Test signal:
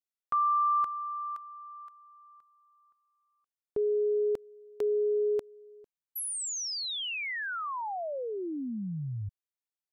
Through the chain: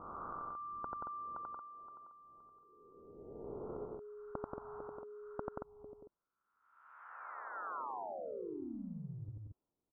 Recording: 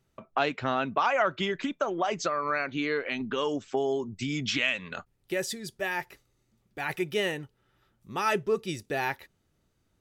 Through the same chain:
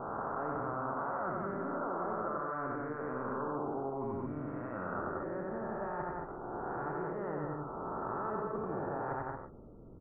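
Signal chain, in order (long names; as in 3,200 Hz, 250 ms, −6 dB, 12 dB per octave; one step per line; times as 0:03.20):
peak hold with a rise ahead of every peak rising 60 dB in 1.15 s
low-pass that shuts in the quiet parts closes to 470 Hz, open at −23.5 dBFS
reversed playback
downward compressor 12 to 1, threshold −38 dBFS
reversed playback
Chebyshev low-pass with heavy ripple 1,400 Hz, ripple 3 dB
on a send: loudspeakers that aren't time-aligned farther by 30 metres −2 dB, 62 metres −5 dB, 78 metres −9 dB
on the sum: every bin compressed towards the loudest bin 2 to 1
level +3.5 dB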